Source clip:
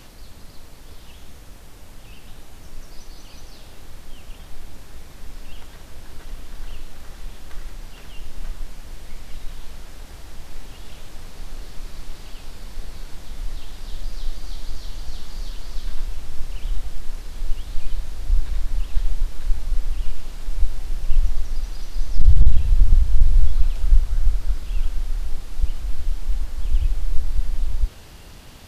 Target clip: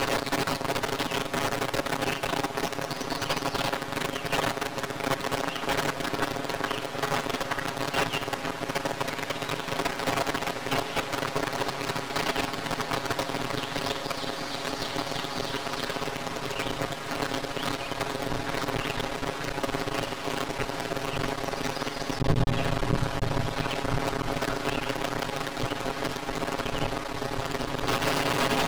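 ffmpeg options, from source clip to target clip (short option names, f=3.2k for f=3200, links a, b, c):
-filter_complex "[0:a]aeval=exprs='val(0)+0.5*0.0531*sgn(val(0))':c=same,highpass=130,aeval=exprs='max(val(0),0)':c=same,aecho=1:1:7.3:0.98,asplit=2[a][b];[b]highpass=f=720:p=1,volume=19dB,asoftclip=type=tanh:threshold=-15.5dB[c];[a][c]amix=inputs=2:normalize=0,lowpass=f=1k:p=1,volume=-6dB,volume=8dB"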